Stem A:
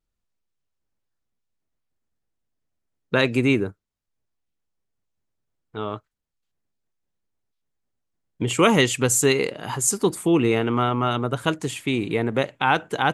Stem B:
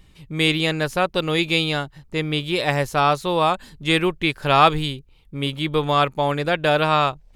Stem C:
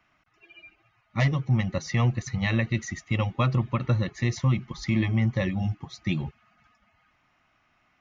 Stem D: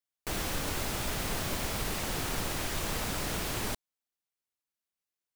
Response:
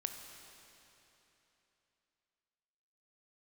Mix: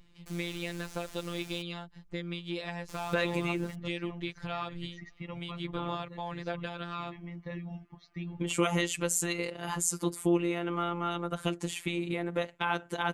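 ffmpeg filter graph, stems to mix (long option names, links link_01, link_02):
-filter_complex "[0:a]volume=1dB[link_01];[1:a]volume=-5.5dB[link_02];[2:a]lowpass=4000,adelay=2100,volume=-8dB[link_03];[3:a]acrossover=split=9800[link_04][link_05];[link_05]acompressor=threshold=-52dB:ratio=4:attack=1:release=60[link_06];[link_04][link_06]amix=inputs=2:normalize=0,highshelf=frequency=5800:gain=10,volume=-14.5dB,asplit=3[link_07][link_08][link_09];[link_07]atrim=end=1.62,asetpts=PTS-STARTPTS,afade=type=out:start_time=1.616:duration=0.004:curve=hsin[link_10];[link_08]atrim=start=1.62:end=2.89,asetpts=PTS-STARTPTS,volume=0[link_11];[link_09]atrim=start=2.89,asetpts=PTS-STARTPTS,afade=type=in:duration=0.004:curve=hsin[link_12];[link_10][link_11][link_12]concat=n=3:v=0:a=1[link_13];[link_01][link_13]amix=inputs=2:normalize=0,acompressor=threshold=-29dB:ratio=2,volume=0dB[link_14];[link_02][link_03]amix=inputs=2:normalize=0,lowpass=6500,acompressor=threshold=-31dB:ratio=5,volume=0dB[link_15];[link_14][link_15]amix=inputs=2:normalize=0,afftfilt=real='hypot(re,im)*cos(PI*b)':imag='0':win_size=1024:overlap=0.75"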